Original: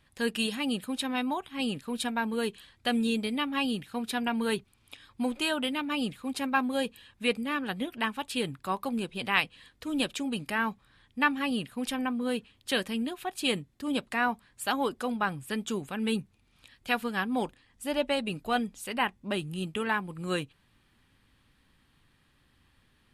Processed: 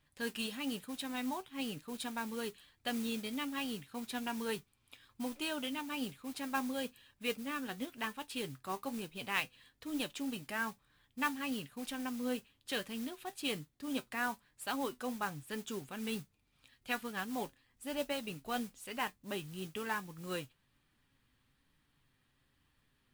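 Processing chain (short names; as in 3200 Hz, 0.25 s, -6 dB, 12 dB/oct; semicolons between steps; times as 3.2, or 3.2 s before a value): modulation noise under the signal 14 dB; flange 1.1 Hz, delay 6.5 ms, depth 1.6 ms, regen +66%; gain -4.5 dB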